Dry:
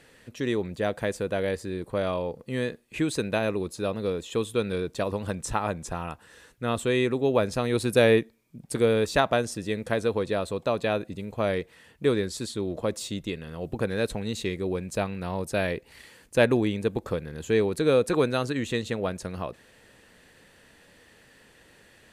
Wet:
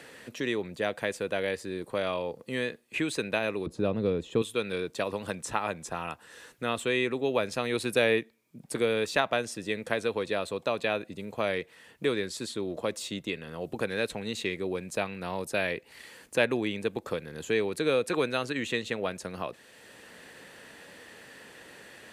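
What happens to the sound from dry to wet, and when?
3.66–4.42 s: tilt EQ -4.5 dB/octave
whole clip: high-pass 240 Hz 6 dB/octave; dynamic bell 2.5 kHz, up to +6 dB, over -44 dBFS, Q 1.1; three bands compressed up and down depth 40%; trim -3 dB

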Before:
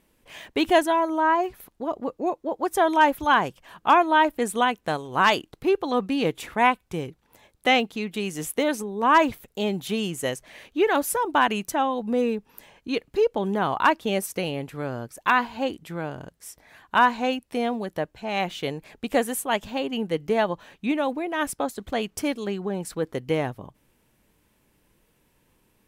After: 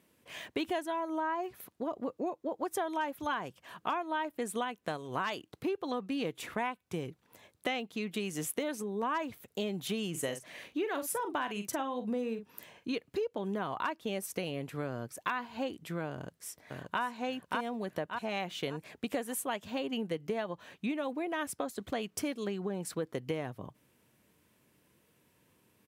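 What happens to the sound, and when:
10.10–12.94 s: doubling 44 ms -10.5 dB
16.12–17.02 s: echo throw 580 ms, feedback 30%, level -2.5 dB
whole clip: high-pass 82 Hz 24 dB/octave; band-stop 840 Hz, Q 12; compression 6:1, threshold -29 dBFS; trim -2.5 dB

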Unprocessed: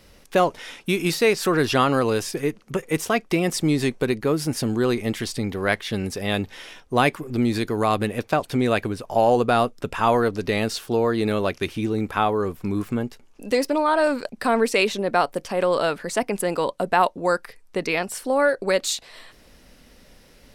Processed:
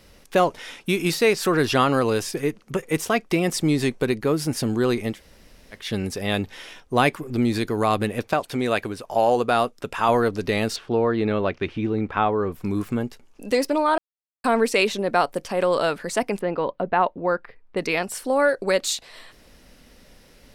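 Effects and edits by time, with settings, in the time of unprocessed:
5.13–5.79 s: room tone, crossfade 0.16 s
8.33–10.09 s: bass shelf 250 Hz -7.5 dB
10.76–12.52 s: low-pass 2.9 kHz
13.98–14.44 s: mute
16.39–17.77 s: distance through air 390 m

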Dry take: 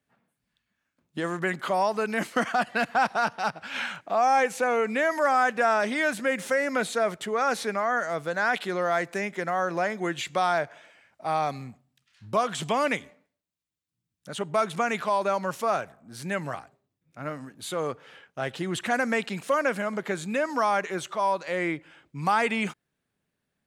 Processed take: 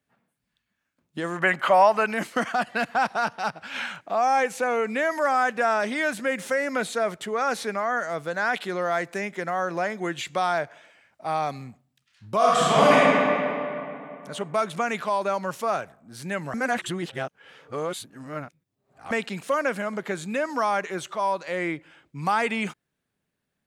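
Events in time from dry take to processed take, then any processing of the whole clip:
1.36–2.13 s: time-frequency box 500–3200 Hz +8 dB
12.37–12.97 s: reverb throw, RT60 2.8 s, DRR -9 dB
16.54–19.11 s: reverse

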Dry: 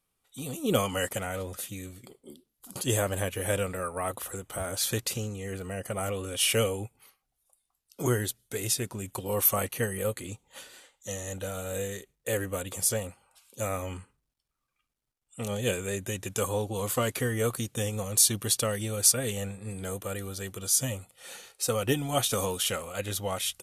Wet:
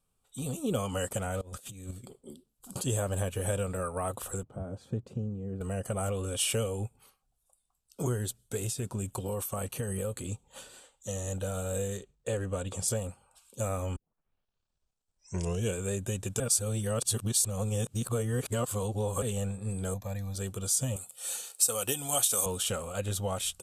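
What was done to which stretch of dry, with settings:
1.41–1.91 s: compressor with a negative ratio -44 dBFS, ratio -0.5
4.43–5.61 s: band-pass filter 200 Hz, Q 0.88
8.58–11.28 s: compression, threshold -30 dBFS
11.98–12.88 s: low-pass 6.9 kHz
13.96 s: tape start 1.82 s
16.40–19.22 s: reverse
19.94–20.35 s: static phaser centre 2 kHz, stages 8
20.96–22.46 s: RIAA curve recording
whole clip: tilt EQ -1.5 dB/octave; compression 3:1, threshold -28 dBFS; graphic EQ with 31 bands 315 Hz -6 dB, 2 kHz -10 dB, 8 kHz +9 dB

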